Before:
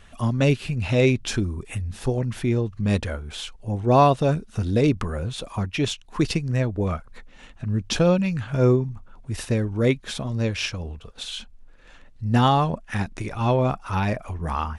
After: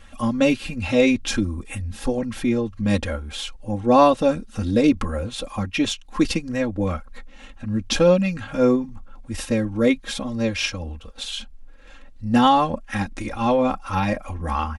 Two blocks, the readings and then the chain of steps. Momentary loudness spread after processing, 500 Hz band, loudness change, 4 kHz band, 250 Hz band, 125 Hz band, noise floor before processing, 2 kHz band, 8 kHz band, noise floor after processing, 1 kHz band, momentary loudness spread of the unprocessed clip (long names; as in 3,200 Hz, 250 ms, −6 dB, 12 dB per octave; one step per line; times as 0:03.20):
14 LU, +2.5 dB, +1.5 dB, +2.5 dB, +4.0 dB, −6.0 dB, −49 dBFS, +2.5 dB, +3.0 dB, −44 dBFS, +2.5 dB, 14 LU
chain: comb filter 3.7 ms, depth 92%